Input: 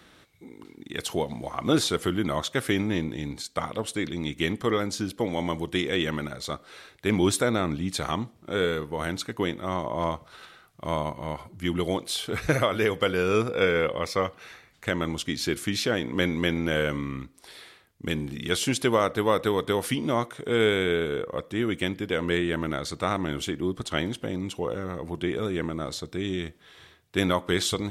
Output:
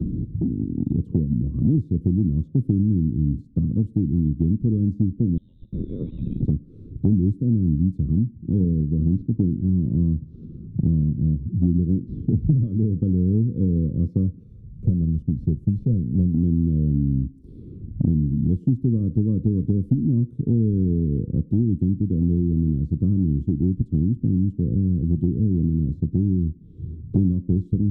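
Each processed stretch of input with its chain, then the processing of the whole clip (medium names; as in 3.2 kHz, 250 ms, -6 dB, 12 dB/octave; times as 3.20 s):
5.37–6.45 s: frequency inversion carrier 3.9 kHz + compression, threshold -30 dBFS
8.60–12.67 s: CVSD coder 32 kbps + high-pass 250 Hz 6 dB/octave + tilt EQ -3 dB/octave
14.43–16.34 s: CVSD coder 64 kbps + comb 1.7 ms, depth 64% + upward expansion, over -34 dBFS
whole clip: inverse Chebyshev low-pass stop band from 680 Hz, stop band 50 dB; bass shelf 170 Hz +9.5 dB; three bands compressed up and down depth 100%; trim +7.5 dB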